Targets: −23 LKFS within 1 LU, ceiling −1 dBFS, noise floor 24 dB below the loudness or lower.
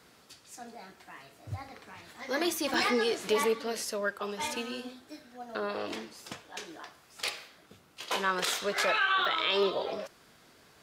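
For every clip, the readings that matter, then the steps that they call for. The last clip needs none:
number of dropouts 2; longest dropout 2.1 ms; integrated loudness −30.5 LKFS; sample peak −16.5 dBFS; target loudness −23.0 LKFS
→ repair the gap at 0:02.74/0:09.25, 2.1 ms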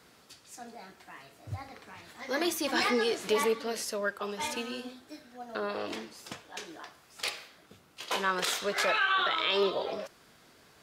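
number of dropouts 0; integrated loudness −30.5 LKFS; sample peak −16.5 dBFS; target loudness −23.0 LKFS
→ level +7.5 dB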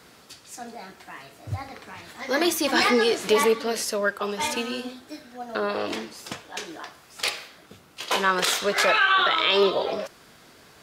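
integrated loudness −23.0 LKFS; sample peak −9.0 dBFS; background noise floor −53 dBFS

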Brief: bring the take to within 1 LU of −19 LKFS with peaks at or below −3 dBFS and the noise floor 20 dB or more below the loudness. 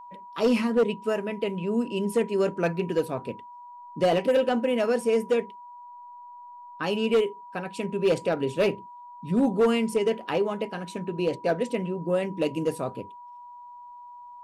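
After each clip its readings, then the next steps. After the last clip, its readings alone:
share of clipped samples 0.7%; peaks flattened at −16.0 dBFS; interfering tone 970 Hz; level of the tone −42 dBFS; integrated loudness −26.5 LKFS; sample peak −16.0 dBFS; target loudness −19.0 LKFS
→ clipped peaks rebuilt −16 dBFS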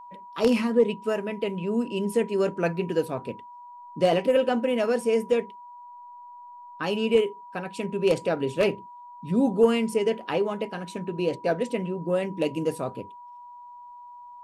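share of clipped samples 0.0%; interfering tone 970 Hz; level of the tone −42 dBFS
→ notch filter 970 Hz, Q 30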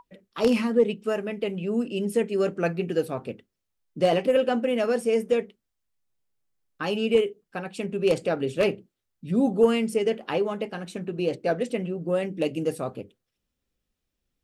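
interfering tone none found; integrated loudness −26.0 LKFS; sample peak −7.5 dBFS; target loudness −19.0 LKFS
→ level +7 dB
brickwall limiter −3 dBFS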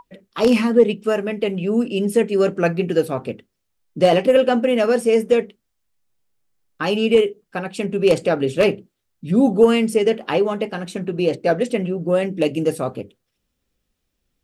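integrated loudness −19.0 LKFS; sample peak −3.0 dBFS; background noise floor −75 dBFS

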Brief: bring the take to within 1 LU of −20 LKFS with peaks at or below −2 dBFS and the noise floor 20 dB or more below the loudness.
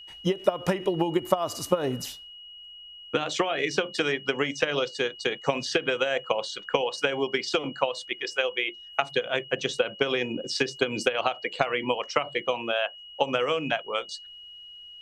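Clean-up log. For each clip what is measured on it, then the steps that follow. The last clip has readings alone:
interfering tone 2,900 Hz; level of the tone −43 dBFS; integrated loudness −27.5 LKFS; sample peak −6.0 dBFS; target loudness −20.0 LKFS
→ notch filter 2,900 Hz, Q 30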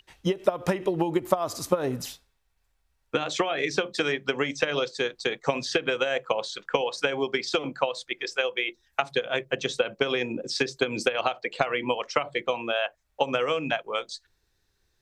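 interfering tone none found; integrated loudness −27.5 LKFS; sample peak −6.0 dBFS; target loudness −20.0 LKFS
→ level +7.5 dB
brickwall limiter −2 dBFS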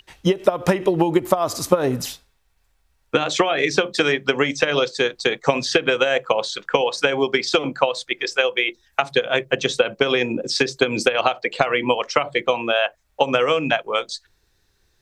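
integrated loudness −20.5 LKFS; sample peak −2.0 dBFS; background noise floor −65 dBFS

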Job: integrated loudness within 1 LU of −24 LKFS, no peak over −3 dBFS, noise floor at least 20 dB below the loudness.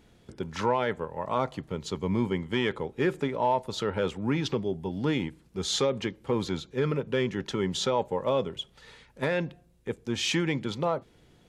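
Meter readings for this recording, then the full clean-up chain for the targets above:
integrated loudness −29.5 LKFS; sample peak −14.5 dBFS; target loudness −24.0 LKFS
→ level +5.5 dB

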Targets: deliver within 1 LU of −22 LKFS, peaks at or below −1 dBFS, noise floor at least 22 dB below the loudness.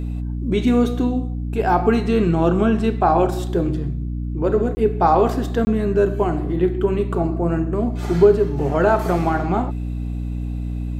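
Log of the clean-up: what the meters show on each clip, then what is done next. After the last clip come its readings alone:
number of dropouts 2; longest dropout 20 ms; mains hum 60 Hz; hum harmonics up to 300 Hz; level of the hum −23 dBFS; integrated loudness −20.0 LKFS; sample peak −2.5 dBFS; target loudness −22.0 LKFS
→ repair the gap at 0:04.75/0:05.65, 20 ms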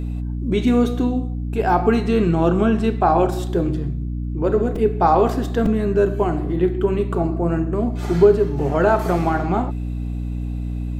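number of dropouts 0; mains hum 60 Hz; hum harmonics up to 300 Hz; level of the hum −23 dBFS
→ hum removal 60 Hz, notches 5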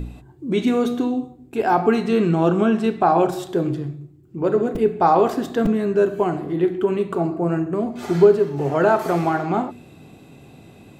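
mains hum none found; integrated loudness −20.0 LKFS; sample peak −2.5 dBFS; target loudness −22.0 LKFS
→ level −2 dB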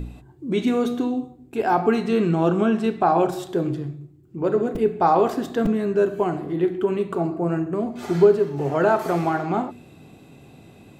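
integrated loudness −22.0 LKFS; sample peak −4.5 dBFS; background noise floor −49 dBFS

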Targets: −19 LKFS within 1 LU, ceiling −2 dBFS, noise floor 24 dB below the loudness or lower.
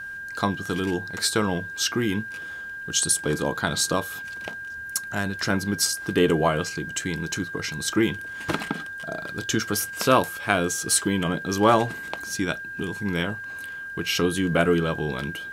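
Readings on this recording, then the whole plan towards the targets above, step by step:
interfering tone 1,600 Hz; level of the tone −33 dBFS; integrated loudness −25.0 LKFS; sample peak −3.0 dBFS; target loudness −19.0 LKFS
→ notch filter 1,600 Hz, Q 30
level +6 dB
brickwall limiter −2 dBFS

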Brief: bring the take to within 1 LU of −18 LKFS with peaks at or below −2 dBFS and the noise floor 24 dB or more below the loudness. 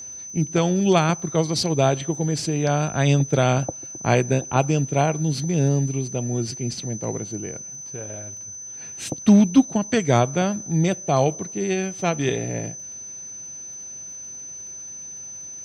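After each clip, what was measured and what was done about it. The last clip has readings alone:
crackle rate 28 per second; interfering tone 6,100 Hz; level of the tone −34 dBFS; integrated loudness −22.0 LKFS; sample peak −3.5 dBFS; target loudness −18.0 LKFS
→ click removal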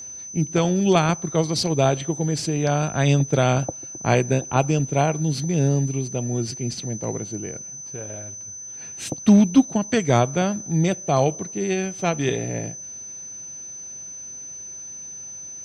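crackle rate 0.32 per second; interfering tone 6,100 Hz; level of the tone −34 dBFS
→ notch filter 6,100 Hz, Q 30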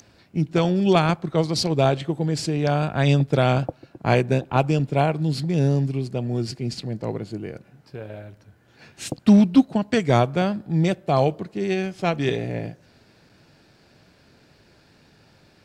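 interfering tone none found; integrated loudness −22.0 LKFS; sample peak −3.5 dBFS; target loudness −18.0 LKFS
→ level +4 dB
brickwall limiter −2 dBFS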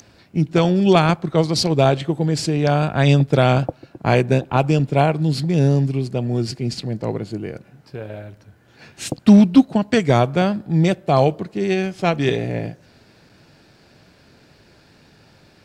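integrated loudness −18.0 LKFS; sample peak −2.0 dBFS; background noise floor −53 dBFS

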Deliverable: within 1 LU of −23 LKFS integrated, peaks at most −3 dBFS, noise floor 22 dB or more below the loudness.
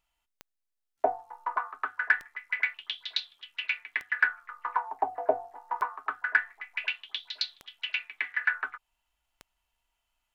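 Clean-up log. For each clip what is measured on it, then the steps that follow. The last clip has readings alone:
number of clicks 6; integrated loudness −31.5 LKFS; sample peak −9.5 dBFS; target loudness −23.0 LKFS
→ click removal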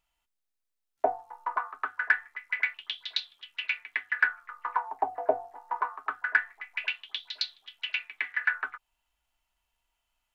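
number of clicks 0; integrated loudness −31.5 LKFS; sample peak −9.5 dBFS; target loudness −23.0 LKFS
→ level +8.5 dB
brickwall limiter −3 dBFS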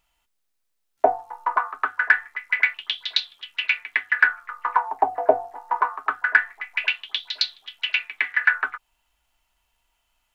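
integrated loudness −23.0 LKFS; sample peak −3.0 dBFS; background noise floor −74 dBFS

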